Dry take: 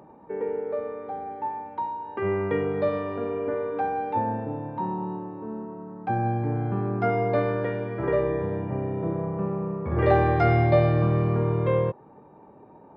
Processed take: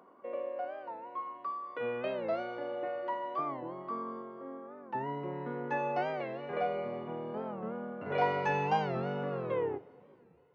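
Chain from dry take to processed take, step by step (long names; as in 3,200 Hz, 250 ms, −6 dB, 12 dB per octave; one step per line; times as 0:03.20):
turntable brake at the end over 1.53 s
high-pass filter 200 Hz 12 dB per octave
change of speed 1.23×
coupled-rooms reverb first 0.46 s, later 3.8 s, from −16 dB, DRR 14 dB
wow of a warped record 45 rpm, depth 160 cents
level −8.5 dB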